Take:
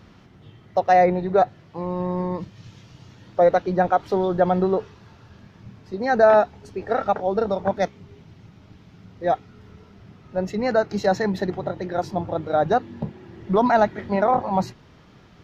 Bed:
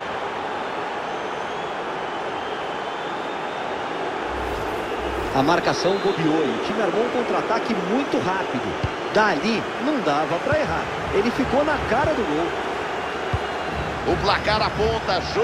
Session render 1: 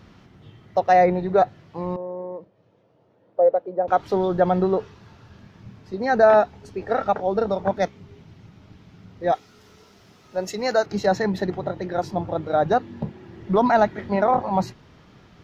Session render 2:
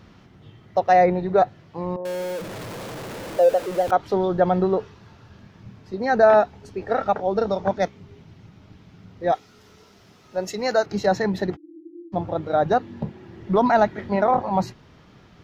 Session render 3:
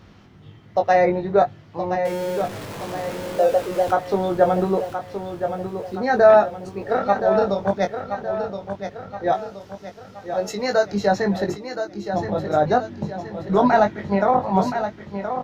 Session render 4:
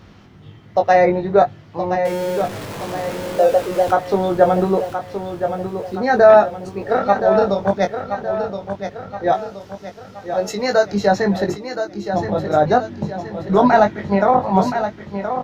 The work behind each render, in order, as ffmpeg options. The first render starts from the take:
-filter_complex "[0:a]asettb=1/sr,asplit=3[s0][s1][s2];[s0]atrim=end=1.964[s3];[s1]atrim=start=1.96:end=3.88,asetpts=PTS-STARTPTS,afade=t=in:d=0.004:c=qsin,afade=t=out:st=1.916:d=0.004:c=qsin,bandpass=f=540:t=q:w=2.7[s4];[s2]atrim=start=3.876[s5];[s3][s4]acrossfade=d=0.004:c1=hsin:c2=qsin[s6];[s6][s5]acrossfade=d=0.004:c1=qsin:c2=hsin,asettb=1/sr,asplit=3[s7][s8][s9];[s7]atrim=end=9.324[s10];[s8]atrim=start=9.32:end=10.86,asetpts=PTS-STARTPTS,afade=t=in:d=0.004:c=qsin,afade=t=out:st=1.536:d=0.004:c=qsin,bass=f=250:g=-11,treble=f=4000:g=13[s11];[s9]atrim=start=10.856[s12];[s10][s11]acrossfade=d=0.004:c1=hsin:c2=qsin[s13];[s13][s12]acrossfade=d=0.004:c1=qsin:c2=hsin"
-filter_complex "[0:a]asettb=1/sr,asplit=3[s0][s1][s2];[s0]atrim=end=2.054[s3];[s1]atrim=start=2.05:end=3.91,asetpts=PTS-STARTPTS,afade=t=in:d=0.004:c=qsin,afade=t=out:st=1.856:d=0.004:c=qsin,aeval=exprs='val(0)+0.5*0.0376*sgn(val(0))':c=same[s4];[s2]atrim=start=3.906[s5];[s3][s4]acrossfade=d=0.004:c1=hsin:c2=qsin[s6];[s6][s5]acrossfade=d=0.004:c1=qsin:c2=hsin,asettb=1/sr,asplit=3[s7][s8][s9];[s7]atrim=end=7.364[s10];[s8]atrim=start=7.36:end=7.78,asetpts=PTS-STARTPTS,afade=t=in:d=0.004:c=qsin,afade=t=out:st=0.416:d=0.004:c=qsin,lowpass=f=6300:t=q:w=1.9[s11];[s9]atrim=start=7.776[s12];[s10][s11]acrossfade=d=0.004:c1=hsin:c2=qsin[s13];[s13][s12]acrossfade=d=0.004:c1=qsin:c2=hsin,asplit=3[s14][s15][s16];[s14]afade=t=out:st=11.55:d=0.02[s17];[s15]asuperpass=centerf=320:order=12:qfactor=6.7,afade=t=in:st=11.55:d=0.02,afade=t=out:st=12.12:d=0.02[s18];[s16]afade=t=in:st=12.12:d=0.02[s19];[s17][s18][s19]amix=inputs=3:normalize=0"
-filter_complex "[0:a]asplit=2[s0][s1];[s1]adelay=20,volume=0.531[s2];[s0][s2]amix=inputs=2:normalize=0,aecho=1:1:1022|2044|3066|4088|5110:0.376|0.177|0.083|0.039|0.0183"
-af "volume=1.5,alimiter=limit=0.891:level=0:latency=1"

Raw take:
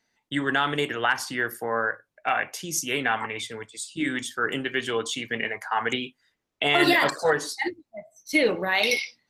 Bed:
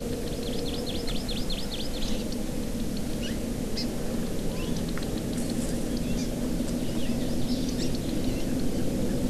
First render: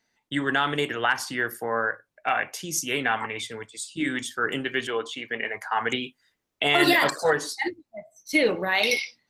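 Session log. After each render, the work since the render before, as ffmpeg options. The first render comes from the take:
-filter_complex "[0:a]asettb=1/sr,asplit=3[s0][s1][s2];[s0]atrim=end=4.874[s3];[s1]atrim=start=4.87:end=5.54,asetpts=PTS-STARTPTS,afade=t=in:d=0.004:c=qsin,afade=t=out:st=0.666:d=0.004:c=qsin,bass=f=250:g=-10,treble=f=4000:g=-13[s4];[s2]atrim=start=5.536[s5];[s3][s4]acrossfade=d=0.004:c1=hsin:c2=qsin[s6];[s6][s5]acrossfade=d=0.004:c1=qsin:c2=hsin,asettb=1/sr,asplit=3[s7][s8][s9];[s7]atrim=end=6.044[s10];[s8]atrim=start=6.04:end=7.36,asetpts=PTS-STARTPTS,afade=t=in:d=0.004:c=qsin,afade=t=out:st=1.316:d=0.004:c=qsin,highshelf=f=8100:g=6[s11];[s9]atrim=start=7.356[s12];[s10][s11]acrossfade=d=0.004:c1=hsin:c2=qsin[s13];[s13][s12]acrossfade=d=0.004:c1=qsin:c2=hsin"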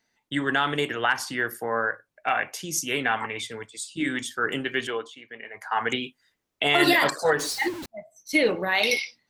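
-filter_complex "[0:a]asettb=1/sr,asplit=3[s0][s1][s2];[s0]atrim=end=7.394[s3];[s1]atrim=start=7.39:end=7.86,asetpts=PTS-STARTPTS,afade=t=in:d=0.004:c=qsin,afade=t=out:st=0.466:d=0.004:c=qsin,aeval=exprs='val(0)+0.5*0.0282*sgn(val(0))':c=same[s4];[s2]atrim=start=7.856[s5];[s3][s4]acrossfade=d=0.004:c1=hsin:c2=qsin[s6];[s6][s5]acrossfade=d=0.004:c1=qsin:c2=hsin,asplit=3[s7][s8][s9];[s7]atrim=end=5.13,asetpts=PTS-STARTPTS,afade=t=out:st=4.89:d=0.24:silence=0.281838[s10];[s8]atrim=start=5.13:end=5.5,asetpts=PTS-STARTPTS,volume=0.282[s11];[s9]atrim=start=5.5,asetpts=PTS-STARTPTS,afade=t=in:d=0.24:silence=0.281838[s12];[s10][s11][s12]concat=n=3:v=0:a=1"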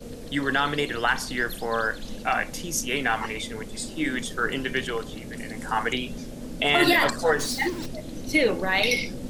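-filter_complex "[1:a]volume=0.422[s0];[0:a][s0]amix=inputs=2:normalize=0"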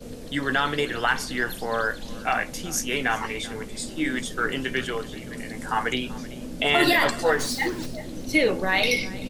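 -filter_complex "[0:a]asplit=2[s0][s1];[s1]adelay=16,volume=0.237[s2];[s0][s2]amix=inputs=2:normalize=0,aecho=1:1:385:0.106"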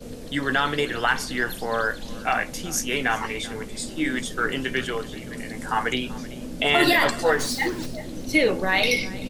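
-af "volume=1.12"

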